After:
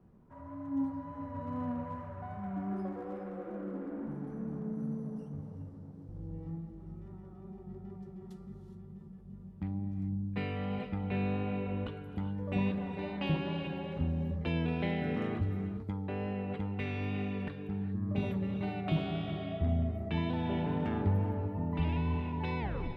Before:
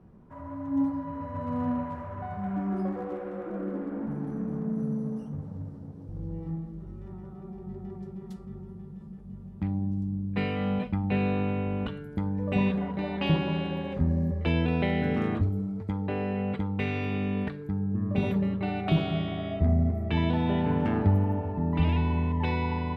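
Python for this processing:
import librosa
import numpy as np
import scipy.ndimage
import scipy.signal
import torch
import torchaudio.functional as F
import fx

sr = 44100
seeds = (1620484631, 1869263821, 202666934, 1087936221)

y = fx.tape_stop_end(x, sr, length_s=0.37)
y = fx.wow_flutter(y, sr, seeds[0], rate_hz=2.1, depth_cents=24.0)
y = fx.rev_gated(y, sr, seeds[1], gate_ms=440, shape='rising', drr_db=8.5)
y = F.gain(torch.from_numpy(y), -7.0).numpy()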